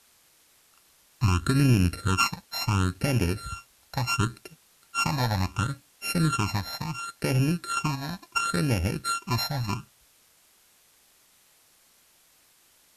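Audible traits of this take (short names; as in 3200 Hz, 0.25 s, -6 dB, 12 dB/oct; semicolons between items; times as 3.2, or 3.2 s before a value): a buzz of ramps at a fixed pitch in blocks of 32 samples; phasing stages 8, 0.71 Hz, lowest notch 370–1200 Hz; a quantiser's noise floor 10-bit, dither triangular; MP2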